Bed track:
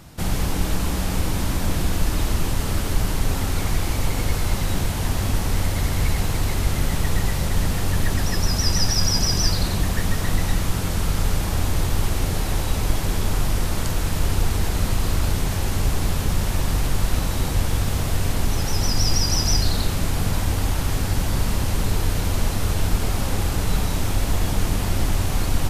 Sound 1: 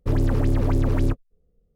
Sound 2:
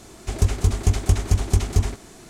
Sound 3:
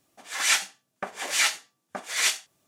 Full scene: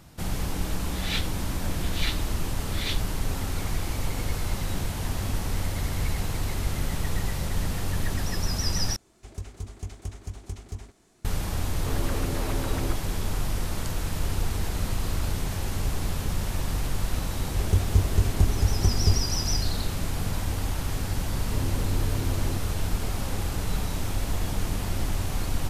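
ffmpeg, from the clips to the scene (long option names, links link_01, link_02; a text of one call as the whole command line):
ffmpeg -i bed.wav -i cue0.wav -i cue1.wav -i cue2.wav -filter_complex "[2:a]asplit=2[link_01][link_02];[1:a]asplit=2[link_03][link_04];[0:a]volume=-6.5dB[link_05];[3:a]lowpass=frequency=3800:width_type=q:width=3.7[link_06];[link_03]asplit=2[link_07][link_08];[link_08]highpass=frequency=720:poles=1,volume=30dB,asoftclip=type=tanh:threshold=-11dB[link_09];[link_07][link_09]amix=inputs=2:normalize=0,lowpass=frequency=2800:poles=1,volume=-6dB[link_10];[link_02]tiltshelf=frequency=970:gain=5[link_11];[link_05]asplit=2[link_12][link_13];[link_12]atrim=end=8.964[link_14];[link_01]atrim=end=2.29,asetpts=PTS-STARTPTS,volume=-17.5dB[link_15];[link_13]atrim=start=11.246[link_16];[link_06]atrim=end=2.67,asetpts=PTS-STARTPTS,volume=-13.5dB,afade=type=in:duration=0.004:curve=hsin,afade=type=out:start_time=2.666:duration=0.004:curve=hsin,adelay=630[link_17];[link_10]atrim=end=1.75,asetpts=PTS-STARTPTS,volume=-16dB,afade=type=in:duration=0.004:curve=hsin,afade=type=out:start_time=1.746:duration=0.004:curve=hsin,adelay=11800[link_18];[link_11]atrim=end=2.29,asetpts=PTS-STARTPTS,volume=-8dB,afade=type=in:duration=0.004:curve=hsin,afade=type=out:start_time=2.286:duration=0.004:curve=hsin,adelay=17310[link_19];[link_04]atrim=end=1.75,asetpts=PTS-STARTPTS,volume=-11.5dB,afade=type=in:duration=0.004:curve=hsin,afade=type=out:start_time=1.746:duration=0.004:curve=hsin,adelay=21450[link_20];[link_14][link_15]acrossfade=duration=0.004:curve1=hsin:curve2=hsin[link_21];[link_21][link_16]acrossfade=duration=0.004:curve1=hsin:curve2=hsin[link_22];[link_22][link_17][link_18][link_19][link_20]amix=inputs=5:normalize=0" out.wav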